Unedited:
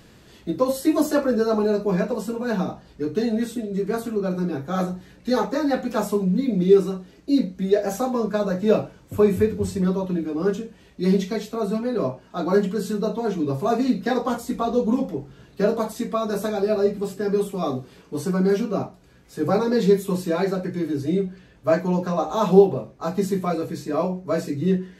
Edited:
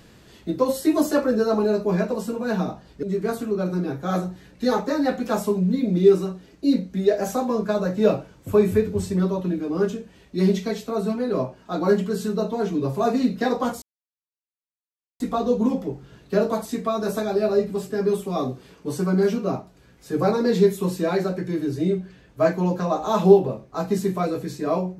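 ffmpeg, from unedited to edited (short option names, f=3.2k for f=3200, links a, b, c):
-filter_complex "[0:a]asplit=3[a][b][c];[a]atrim=end=3.032[d];[b]atrim=start=3.678:end=14.47,asetpts=PTS-STARTPTS,afade=t=out:st=10.788:d=0.004:c=hsin,apad=pad_dur=1.38[e];[c]atrim=start=14.47,asetpts=PTS-STARTPTS,afade=t=in:d=0.004:c=hsin[f];[e][f]concat=n=2:v=0:a=1[g];[d][g]acrossfade=d=0.004:c1=hsin:c2=hsin"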